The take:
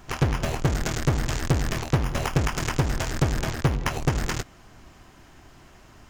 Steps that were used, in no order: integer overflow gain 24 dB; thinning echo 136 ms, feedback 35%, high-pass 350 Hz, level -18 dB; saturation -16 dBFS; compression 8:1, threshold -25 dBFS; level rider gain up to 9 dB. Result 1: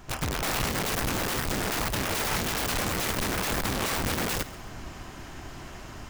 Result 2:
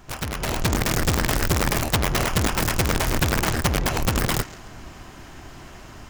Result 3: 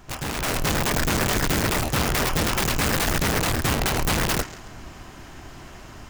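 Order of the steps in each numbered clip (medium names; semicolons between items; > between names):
compression > saturation > level rider > integer overflow > thinning echo; compression > thinning echo > saturation > integer overflow > level rider; thinning echo > integer overflow > compression > level rider > saturation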